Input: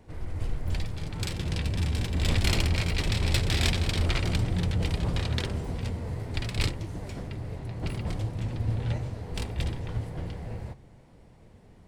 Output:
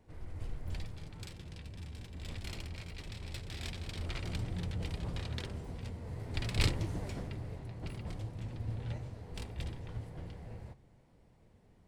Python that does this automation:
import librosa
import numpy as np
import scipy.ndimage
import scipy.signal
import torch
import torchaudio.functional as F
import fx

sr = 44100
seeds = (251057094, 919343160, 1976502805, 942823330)

y = fx.gain(x, sr, db=fx.line((0.86, -10.0), (1.53, -18.0), (3.47, -18.0), (4.4, -10.5), (5.99, -10.5), (6.79, 0.0), (7.86, -10.0)))